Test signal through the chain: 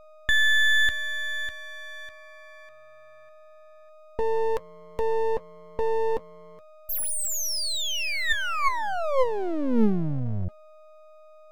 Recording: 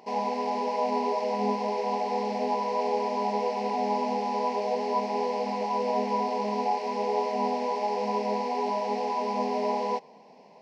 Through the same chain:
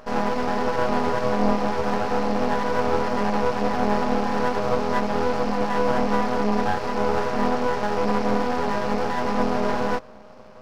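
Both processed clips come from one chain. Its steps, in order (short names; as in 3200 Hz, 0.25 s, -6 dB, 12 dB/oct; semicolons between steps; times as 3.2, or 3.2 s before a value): small resonant body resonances 220/520/1100/1800 Hz, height 11 dB, ringing for 75 ms; whine 620 Hz -50 dBFS; half-wave rectifier; gain +6.5 dB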